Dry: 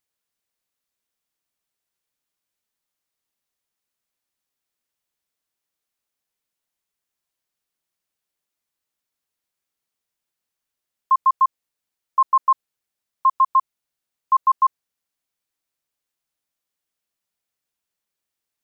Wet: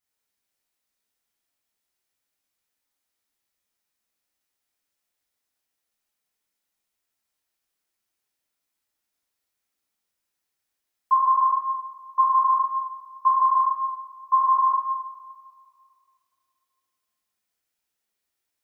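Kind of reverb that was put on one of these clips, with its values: two-slope reverb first 0.95 s, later 2.4 s, from -18 dB, DRR -8.5 dB; gain -7 dB

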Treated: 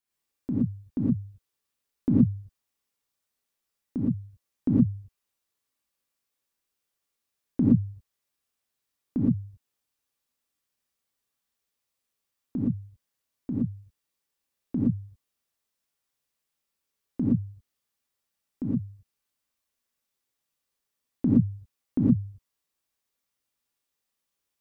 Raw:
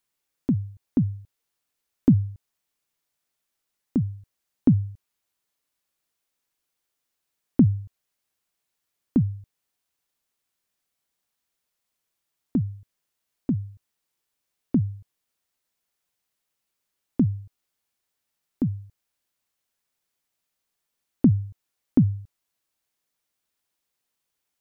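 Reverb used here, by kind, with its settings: non-linear reverb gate 0.14 s rising, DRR -5.5 dB; gain -9 dB

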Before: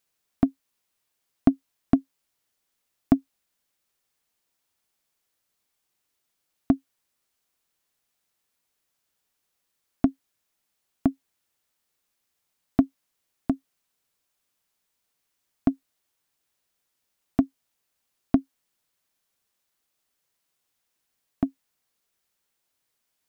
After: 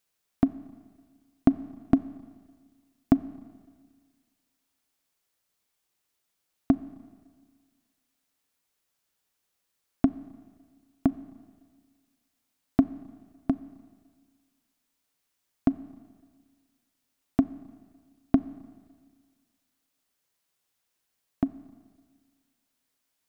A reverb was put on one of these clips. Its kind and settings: Schroeder reverb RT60 1.7 s, combs from 29 ms, DRR 16 dB; gain -1 dB

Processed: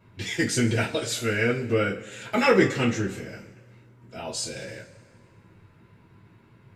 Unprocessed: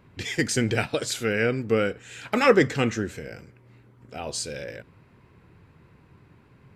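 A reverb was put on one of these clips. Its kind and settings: two-slope reverb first 0.22 s, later 1.6 s, from -21 dB, DRR -8 dB; gain -8.5 dB

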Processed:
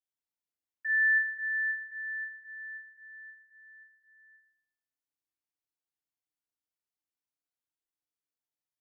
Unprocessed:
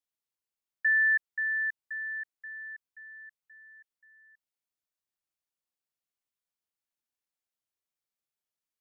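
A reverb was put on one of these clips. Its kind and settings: FDN reverb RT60 0.77 s, low-frequency decay 1.35×, high-frequency decay 0.75×, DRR -8 dB; gain -14.5 dB

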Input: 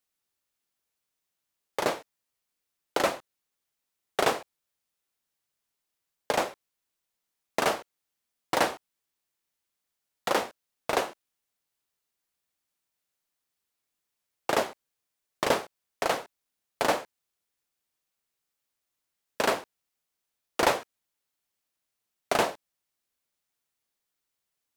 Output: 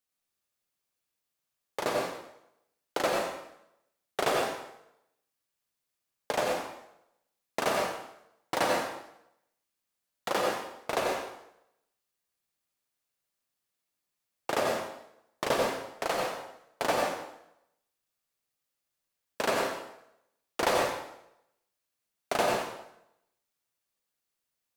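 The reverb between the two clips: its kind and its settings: plate-style reverb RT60 0.8 s, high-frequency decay 0.9×, pre-delay 75 ms, DRR -1 dB; gain -4.5 dB

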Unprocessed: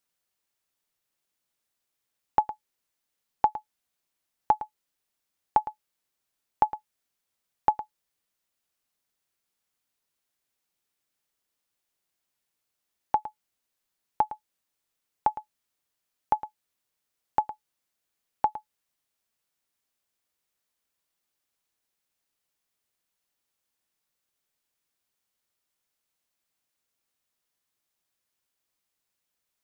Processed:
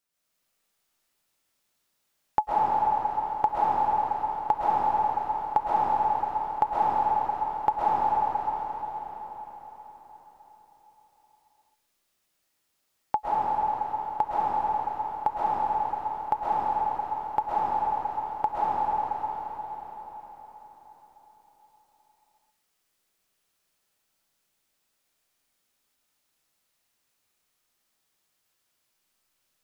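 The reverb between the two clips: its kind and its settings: digital reverb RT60 4.8 s, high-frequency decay 0.95×, pre-delay 90 ms, DRR -9.5 dB; gain -2 dB

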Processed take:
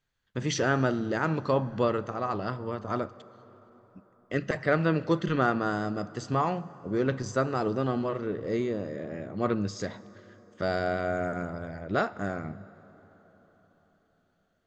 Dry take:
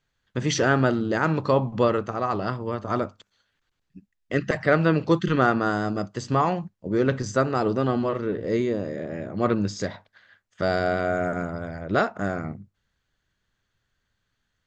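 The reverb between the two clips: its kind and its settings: plate-style reverb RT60 4.7 s, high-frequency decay 0.55×, DRR 17.5 dB; gain -5 dB

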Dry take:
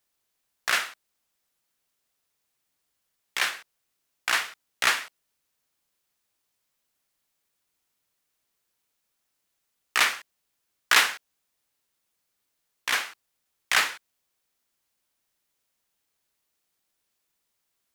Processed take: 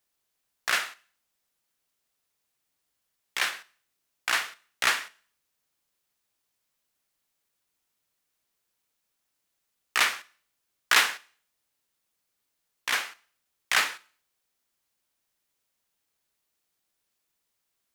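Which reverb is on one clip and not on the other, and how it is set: Schroeder reverb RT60 0.48 s, combs from 26 ms, DRR 19 dB; gain -1.5 dB

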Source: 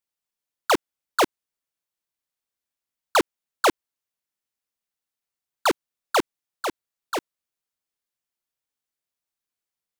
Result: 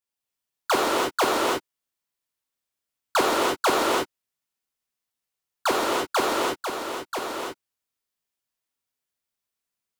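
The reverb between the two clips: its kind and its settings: non-linear reverb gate 0.36 s flat, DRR -5 dB; gain -4 dB

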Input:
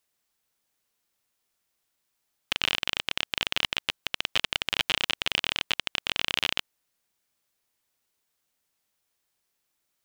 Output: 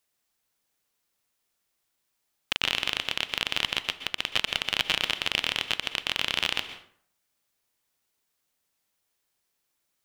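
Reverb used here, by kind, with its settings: plate-style reverb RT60 0.58 s, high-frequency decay 0.65×, pre-delay 0.11 s, DRR 10.5 dB

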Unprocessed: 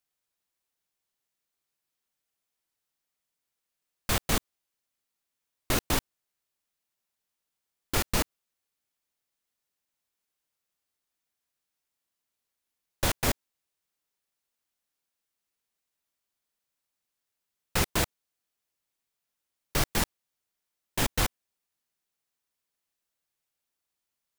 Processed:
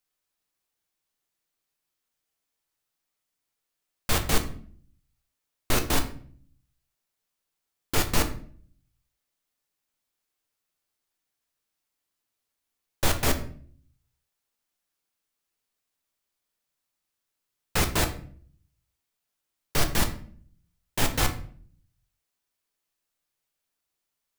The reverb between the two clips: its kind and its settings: shoebox room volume 59 m³, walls mixed, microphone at 0.38 m; gain +1 dB

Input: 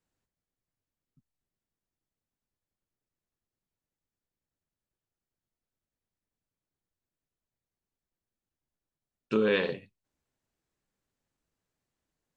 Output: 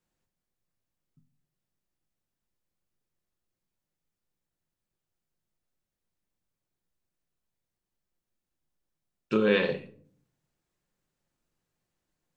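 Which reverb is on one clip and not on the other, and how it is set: shoebox room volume 600 m³, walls furnished, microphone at 0.91 m; gain +1.5 dB

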